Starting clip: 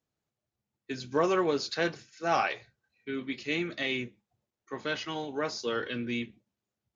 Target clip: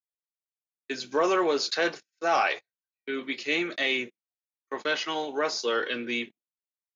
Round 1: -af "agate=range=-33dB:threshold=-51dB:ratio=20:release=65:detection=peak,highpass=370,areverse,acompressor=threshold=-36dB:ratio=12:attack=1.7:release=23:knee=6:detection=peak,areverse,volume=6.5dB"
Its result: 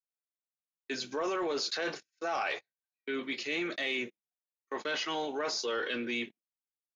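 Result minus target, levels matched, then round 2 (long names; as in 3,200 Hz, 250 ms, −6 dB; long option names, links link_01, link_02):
downward compressor: peak gain reduction +10 dB
-af "agate=range=-33dB:threshold=-51dB:ratio=20:release=65:detection=peak,highpass=370,areverse,acompressor=threshold=-24.5dB:ratio=12:attack=1.7:release=23:knee=6:detection=peak,areverse,volume=6.5dB"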